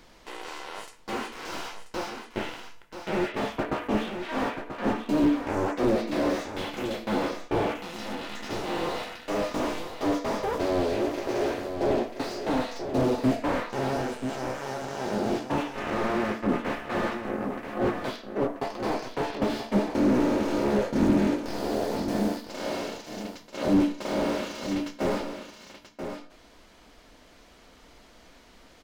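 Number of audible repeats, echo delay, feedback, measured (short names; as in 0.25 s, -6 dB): 1, 0.984 s, no steady repeat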